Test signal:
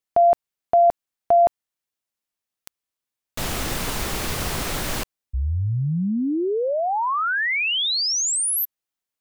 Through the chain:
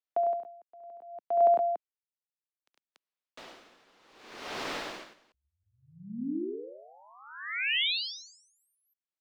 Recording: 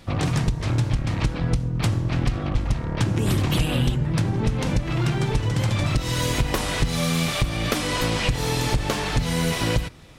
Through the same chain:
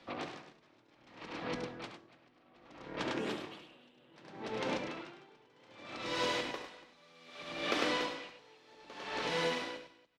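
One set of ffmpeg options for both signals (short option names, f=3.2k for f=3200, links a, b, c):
-filter_complex "[0:a]acrossover=split=230 5400:gain=0.1 1 0.0708[a][b][c];[a][b][c]amix=inputs=3:normalize=0,acrossover=split=200|6200[d][e][f];[d]acompressor=threshold=-46dB:ratio=10:attack=0.24:release=158:detection=peak[g];[g][e][f]amix=inputs=3:normalize=0,aecho=1:1:69.97|102|285.7:0.447|0.708|0.562,aeval=exprs='val(0)*pow(10,-29*(0.5-0.5*cos(2*PI*0.64*n/s))/20)':c=same,volume=-7.5dB"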